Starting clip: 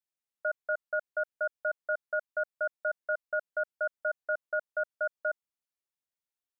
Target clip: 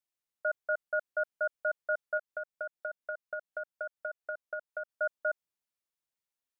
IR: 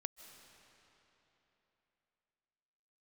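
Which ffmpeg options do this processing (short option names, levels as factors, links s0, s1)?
-filter_complex "[0:a]asettb=1/sr,asplit=3[s0][s1][s2];[s0]atrim=end=2.174[s3];[s1]atrim=start=2.17:end=4.89,asetpts=PTS-STARTPTS,afade=t=in:d=0.004:c=qsin,afade=t=out:st=2.716:d=0.004:c=qsin,acompressor=threshold=0.0178:ratio=6[s4];[s2]atrim=start=4.886[s5];[s3][s4]acrossfade=d=0.004:c1=hsin:c2=qsin[s6];[s6][s5]acrossfade=d=0.004:c1=qsin:c2=hsin"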